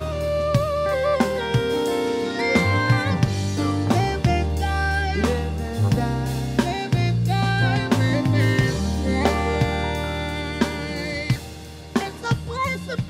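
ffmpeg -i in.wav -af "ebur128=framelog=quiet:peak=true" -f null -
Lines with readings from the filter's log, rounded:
Integrated loudness:
  I:         -22.2 LUFS
  Threshold: -32.3 LUFS
Loudness range:
  LRA:         3.4 LU
  Threshold: -42.0 LUFS
  LRA low:   -24.4 LUFS
  LRA high:  -20.9 LUFS
True peak:
  Peak:       -4.5 dBFS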